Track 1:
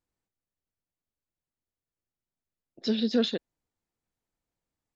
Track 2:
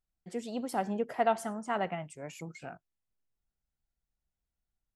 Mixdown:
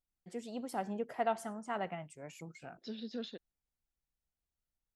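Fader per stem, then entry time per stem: -16.5 dB, -5.5 dB; 0.00 s, 0.00 s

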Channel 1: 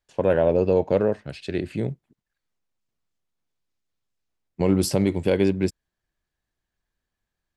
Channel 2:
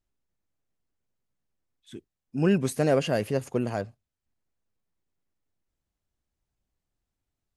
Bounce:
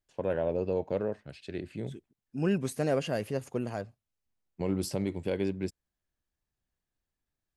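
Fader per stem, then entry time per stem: -10.5 dB, -5.5 dB; 0.00 s, 0.00 s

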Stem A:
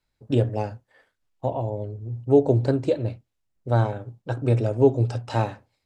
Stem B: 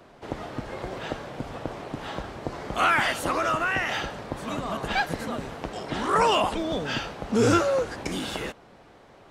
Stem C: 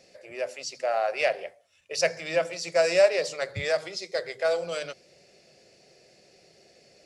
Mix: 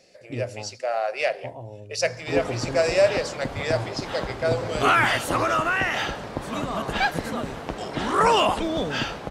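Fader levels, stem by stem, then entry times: -11.0 dB, +2.5 dB, +0.5 dB; 0.00 s, 2.05 s, 0.00 s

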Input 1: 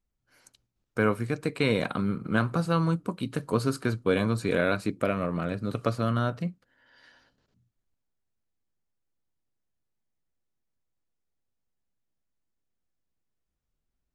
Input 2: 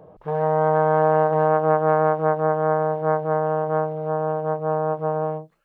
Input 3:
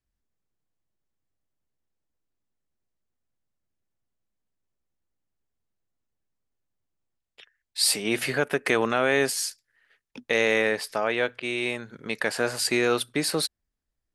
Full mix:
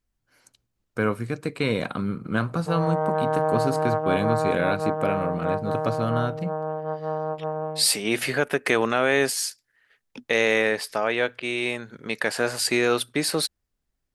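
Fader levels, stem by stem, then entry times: +0.5 dB, -5.5 dB, +1.5 dB; 0.00 s, 2.40 s, 0.00 s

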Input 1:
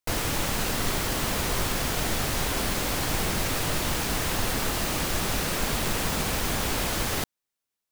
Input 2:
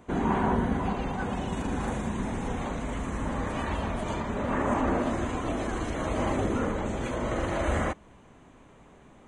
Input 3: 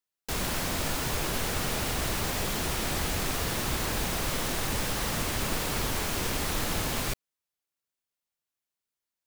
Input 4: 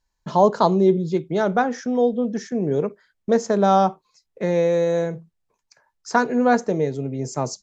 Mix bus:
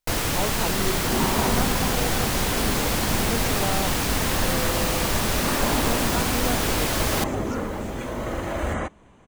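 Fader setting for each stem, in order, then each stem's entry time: +3.0 dB, +0.5 dB, -16.0 dB, -14.0 dB; 0.00 s, 0.95 s, 1.60 s, 0.00 s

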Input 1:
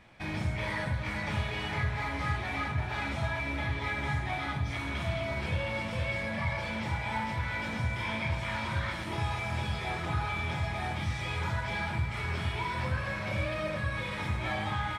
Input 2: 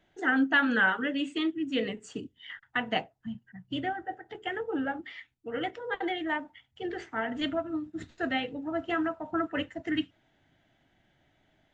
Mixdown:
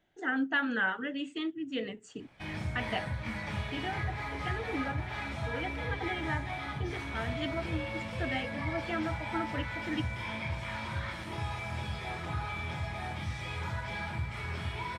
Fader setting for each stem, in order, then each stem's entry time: -4.0 dB, -5.5 dB; 2.20 s, 0.00 s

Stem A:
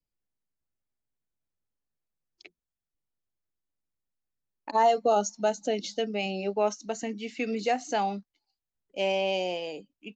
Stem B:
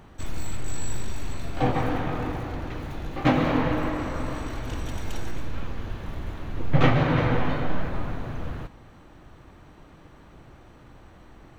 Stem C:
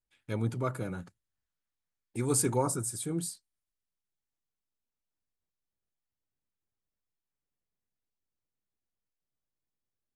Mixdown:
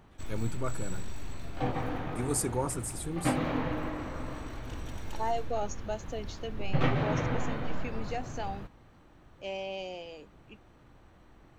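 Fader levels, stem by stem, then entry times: -10.0 dB, -8.0 dB, -3.0 dB; 0.45 s, 0.00 s, 0.00 s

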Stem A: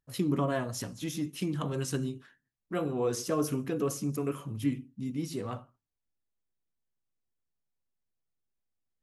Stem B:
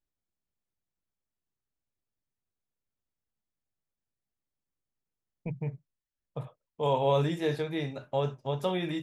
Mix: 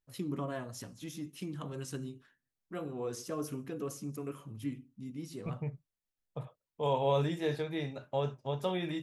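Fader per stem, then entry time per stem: -8.0 dB, -3.5 dB; 0.00 s, 0.00 s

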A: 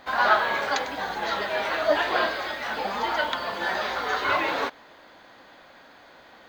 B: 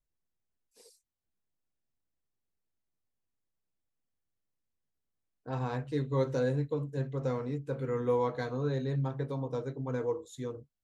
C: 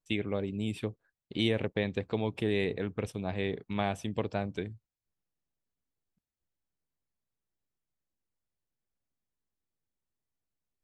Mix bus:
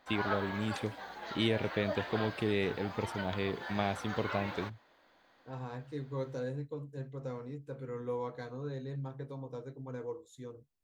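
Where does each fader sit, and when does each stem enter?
-15.5 dB, -8.0 dB, -2.0 dB; 0.00 s, 0.00 s, 0.00 s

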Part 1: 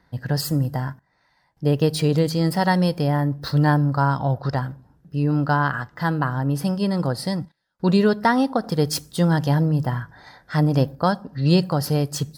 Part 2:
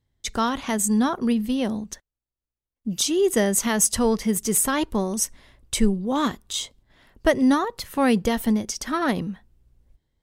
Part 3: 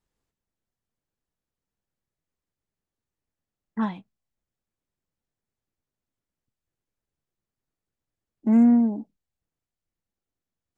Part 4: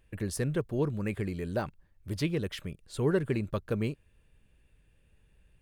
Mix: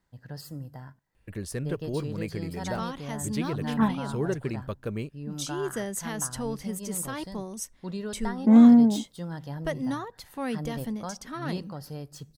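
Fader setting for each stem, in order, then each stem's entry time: -17.5 dB, -12.0 dB, +2.5 dB, -2.0 dB; 0.00 s, 2.40 s, 0.00 s, 1.15 s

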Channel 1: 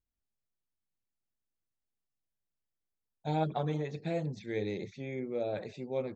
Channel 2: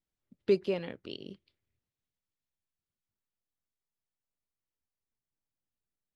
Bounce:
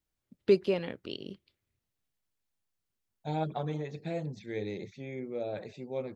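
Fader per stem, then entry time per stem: -1.5 dB, +2.5 dB; 0.00 s, 0.00 s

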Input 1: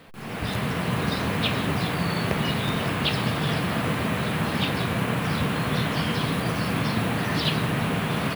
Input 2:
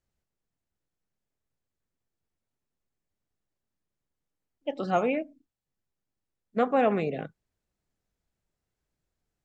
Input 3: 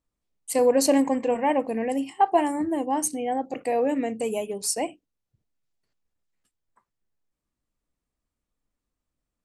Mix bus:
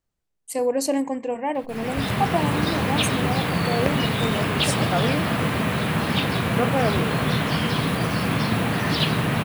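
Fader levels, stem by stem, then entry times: +2.5 dB, 0.0 dB, -3.0 dB; 1.55 s, 0.00 s, 0.00 s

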